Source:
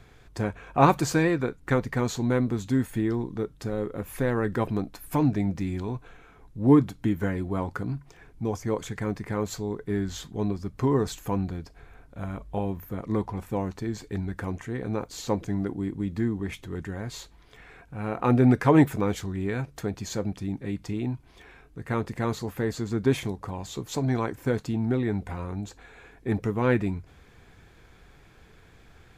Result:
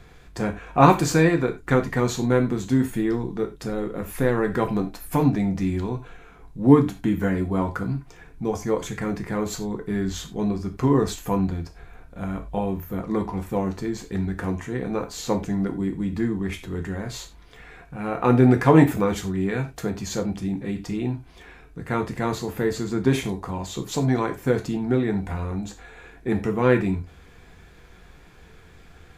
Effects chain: non-linear reverb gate 0.12 s falling, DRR 4.5 dB; gain +3 dB

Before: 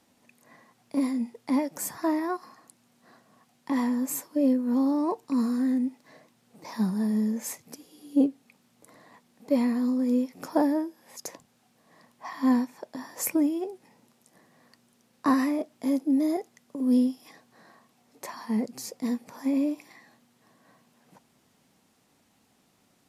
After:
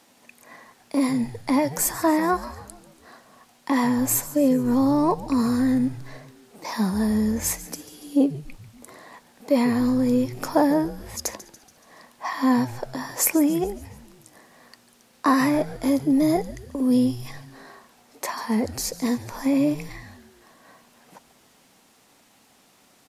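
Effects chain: in parallel at +0.5 dB: limiter -21 dBFS, peak gain reduction 10 dB; on the sum: low shelf 250 Hz -11 dB; frequency-shifting echo 0.142 s, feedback 54%, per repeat -130 Hz, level -16 dB; gain +4 dB

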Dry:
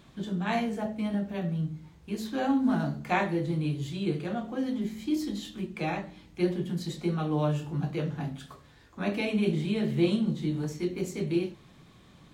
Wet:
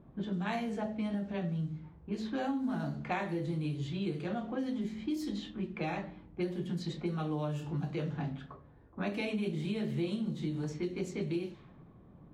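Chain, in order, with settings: low-pass opened by the level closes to 670 Hz, open at -25 dBFS; compressor 4:1, threshold -32 dBFS, peak gain reduction 11 dB

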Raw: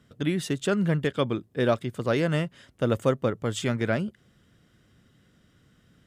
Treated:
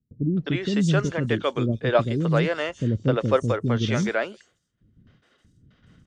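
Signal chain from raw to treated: nonlinear frequency compression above 3900 Hz 1.5:1; gate with hold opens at -51 dBFS; low shelf 74 Hz +4.5 dB; in parallel at +1.5 dB: level quantiser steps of 10 dB; on the sum: three bands offset in time lows, mids, highs 0.26/0.42 s, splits 360/5200 Hz

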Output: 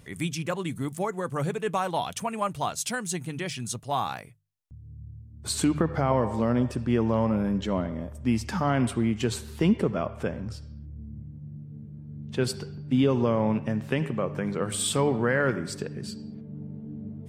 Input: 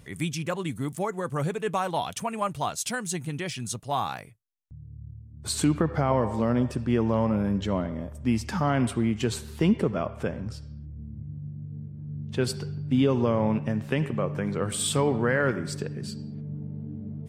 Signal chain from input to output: notches 50/100/150 Hz

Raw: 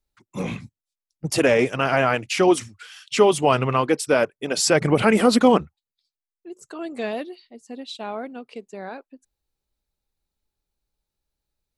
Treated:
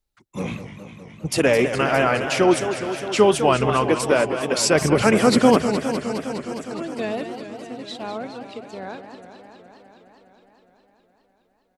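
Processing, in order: harmoniser -12 st -17 dB; warbling echo 0.206 s, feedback 78%, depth 195 cents, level -10 dB

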